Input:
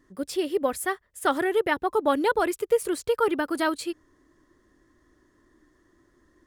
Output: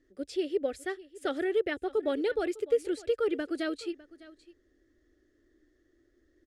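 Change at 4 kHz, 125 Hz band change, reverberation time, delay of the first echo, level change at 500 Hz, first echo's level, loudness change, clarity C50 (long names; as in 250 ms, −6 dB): −6.5 dB, can't be measured, no reverb audible, 604 ms, −4.0 dB, −19.5 dB, −5.5 dB, no reverb audible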